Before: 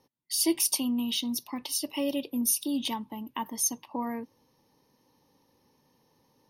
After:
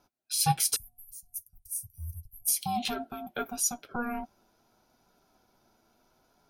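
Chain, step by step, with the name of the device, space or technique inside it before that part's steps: alien voice (ring modulator 480 Hz; flange 0.78 Hz, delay 7 ms, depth 2.2 ms, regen -46%); 0.76–2.48 s: inverse Chebyshev band-stop 230–3800 Hz, stop band 50 dB; trim +6.5 dB

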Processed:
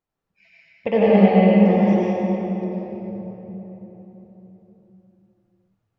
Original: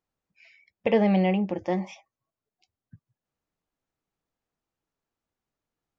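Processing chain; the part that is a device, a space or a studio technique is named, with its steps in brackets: swimming-pool hall (reverberation RT60 4.1 s, pre-delay 80 ms, DRR -7 dB; treble shelf 4 kHz -8 dB)

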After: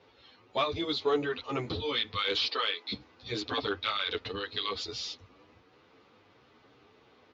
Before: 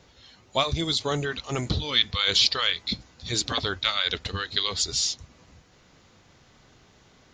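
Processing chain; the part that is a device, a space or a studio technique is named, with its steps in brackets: 2.47–2.92 s: high-pass 230 Hz 24 dB/octave; barber-pole flanger into a guitar amplifier (endless flanger 9.6 ms +2.9 Hz; saturation -19.5 dBFS, distortion -14 dB; cabinet simulation 97–4500 Hz, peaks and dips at 160 Hz -9 dB, 300 Hz +6 dB, 450 Hz +9 dB, 860 Hz +4 dB, 1.2 kHz +6 dB, 2.5 kHz +4 dB); trim -3 dB

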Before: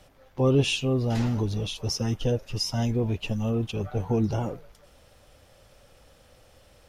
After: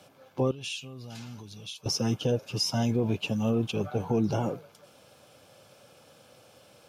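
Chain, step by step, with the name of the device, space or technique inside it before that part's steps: PA system with an anti-feedback notch (high-pass 120 Hz 24 dB/octave; Butterworth band-stop 1.9 kHz, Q 7.3; peak limiter -20 dBFS, peak gain reduction 9.5 dB); 0.51–1.86 s: amplifier tone stack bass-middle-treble 5-5-5; trim +2 dB

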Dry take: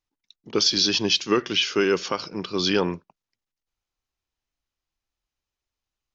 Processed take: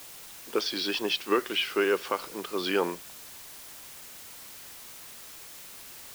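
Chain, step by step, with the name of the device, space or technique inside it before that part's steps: wax cylinder (band-pass 370–2600 Hz; wow and flutter; white noise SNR 13 dB); trim -1.5 dB

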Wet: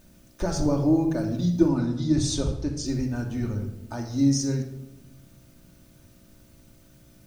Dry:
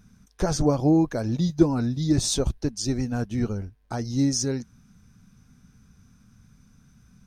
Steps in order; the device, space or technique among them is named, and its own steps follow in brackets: video cassette with head-switching buzz (mains buzz 60 Hz, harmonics 12, -56 dBFS -4 dB/octave; white noise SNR 33 dB); 1.68–2.86 s: low-pass 9.1 kHz 12 dB/octave; simulated room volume 2800 m³, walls furnished, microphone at 2.6 m; trim -5 dB

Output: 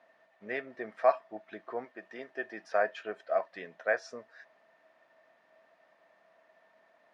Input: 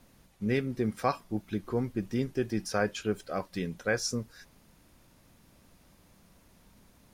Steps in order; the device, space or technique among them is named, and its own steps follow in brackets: 1.84–2.63 s: high-pass 500 Hz -> 150 Hz 6 dB/octave; tin-can telephone (band-pass 660–2100 Hz; small resonant body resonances 650/1800 Hz, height 18 dB, ringing for 75 ms)

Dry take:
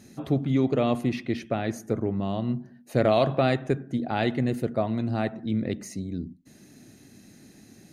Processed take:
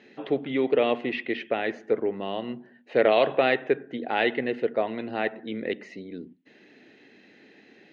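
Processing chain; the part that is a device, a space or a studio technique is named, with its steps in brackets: phone earpiece (cabinet simulation 430–3400 Hz, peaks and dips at 450 Hz +6 dB, 660 Hz -4 dB, 1.2 kHz -6 dB, 1.9 kHz +5 dB, 2.9 kHz +5 dB); trim +4 dB

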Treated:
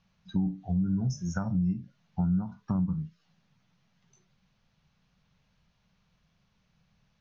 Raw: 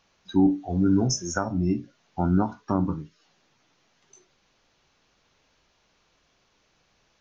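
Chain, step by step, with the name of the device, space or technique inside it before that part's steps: jukebox (low-pass 5.6 kHz 12 dB/octave; resonant low shelf 240 Hz +9.5 dB, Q 3; compression 4:1, threshold -18 dBFS, peak gain reduction 12.5 dB); trim -8 dB

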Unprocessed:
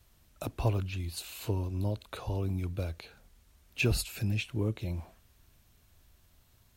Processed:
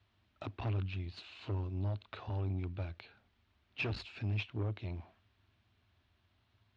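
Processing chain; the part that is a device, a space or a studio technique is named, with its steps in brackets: guitar amplifier (valve stage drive 30 dB, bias 0.75; tone controls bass -1 dB, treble +4 dB; cabinet simulation 94–3600 Hz, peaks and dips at 100 Hz +7 dB, 150 Hz -9 dB, 500 Hz -8 dB)

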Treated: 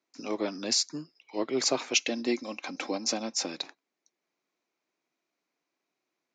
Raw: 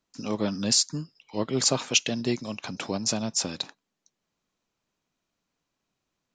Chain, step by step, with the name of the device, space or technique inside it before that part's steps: television speaker (cabinet simulation 190–6800 Hz, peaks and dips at 200 Hz -9 dB, 350 Hz +6 dB, 700 Hz +3 dB, 2.2 kHz +7 dB, 3.1 kHz -4 dB); 1.96–3.46 s: comb 3.8 ms, depth 55%; trim -3 dB

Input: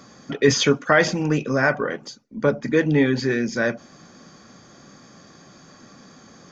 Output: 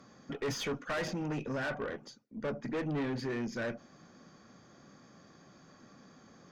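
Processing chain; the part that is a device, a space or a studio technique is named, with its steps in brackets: tube preamp driven hard (valve stage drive 22 dB, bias 0.3; treble shelf 3.6 kHz -7 dB); trim -8.5 dB

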